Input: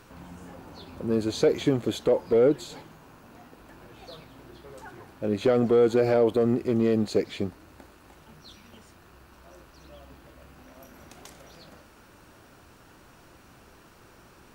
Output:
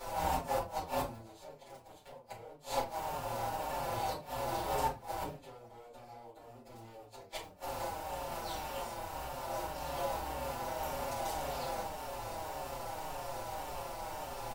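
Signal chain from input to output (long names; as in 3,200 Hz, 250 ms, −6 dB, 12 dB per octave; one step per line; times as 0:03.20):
compressing power law on the bin magnitudes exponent 0.51
flat-topped bell 710 Hz +12 dB 1.3 octaves
transient designer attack −7 dB, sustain +2 dB
downward compressor 16 to 1, threshold −28 dBFS, peak gain reduction 19.5 dB
transient designer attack −3 dB, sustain −7 dB
wrap-around overflow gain 21 dB
gate with flip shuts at −29 dBFS, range −26 dB
rectangular room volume 130 cubic metres, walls furnished, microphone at 4.3 metres
barber-pole flanger 5.4 ms −1.8 Hz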